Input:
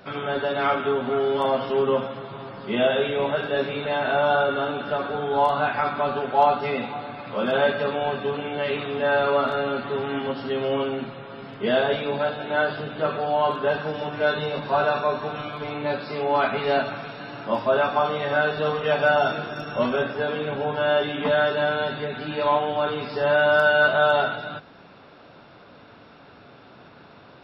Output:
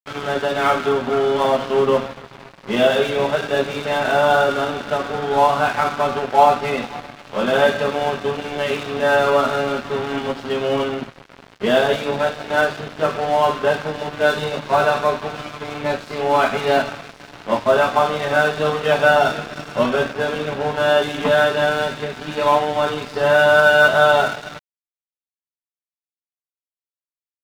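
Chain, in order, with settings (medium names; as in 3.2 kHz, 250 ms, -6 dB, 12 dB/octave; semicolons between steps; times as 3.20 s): crossover distortion -35 dBFS; trim +6.5 dB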